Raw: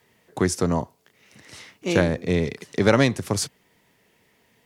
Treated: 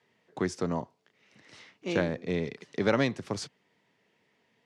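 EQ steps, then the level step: BPF 130–5100 Hz; -7.5 dB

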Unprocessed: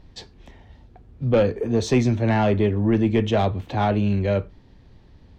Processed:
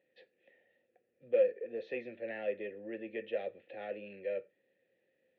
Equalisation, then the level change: vowel filter e; speaker cabinet 270–3400 Hz, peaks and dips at 270 Hz -7 dB, 420 Hz -7 dB, 630 Hz -8 dB, 920 Hz -9 dB, 1600 Hz -6 dB, 3000 Hz -5 dB; 0.0 dB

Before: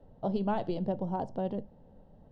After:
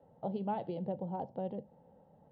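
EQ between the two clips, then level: dynamic EQ 1200 Hz, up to -8 dB, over -49 dBFS, Q 0.92; speaker cabinet 100–3800 Hz, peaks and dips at 160 Hz +4 dB, 510 Hz +7 dB, 840 Hz +10 dB, 1300 Hz +4 dB, 2100 Hz +4 dB; -7.0 dB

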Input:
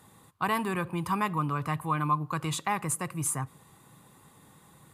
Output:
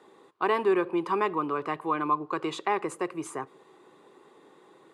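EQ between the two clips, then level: resonant high-pass 380 Hz, resonance Q 4.7; LPF 4300 Hz 12 dB/oct; 0.0 dB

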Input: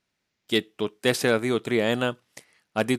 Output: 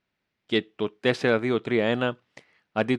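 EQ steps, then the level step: LPF 3400 Hz 12 dB/oct; 0.0 dB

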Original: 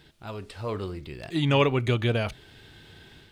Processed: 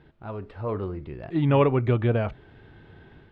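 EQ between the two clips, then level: LPF 1400 Hz 12 dB/oct; +2.5 dB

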